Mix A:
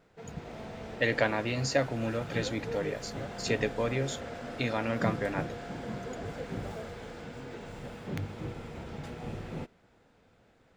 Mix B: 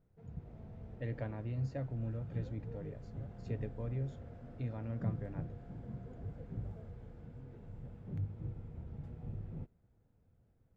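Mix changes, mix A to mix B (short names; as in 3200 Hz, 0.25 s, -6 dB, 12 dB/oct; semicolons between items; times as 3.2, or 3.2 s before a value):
speech: add air absorption 52 m; master: add EQ curve 110 Hz 0 dB, 240 Hz -11 dB, 4400 Hz -29 dB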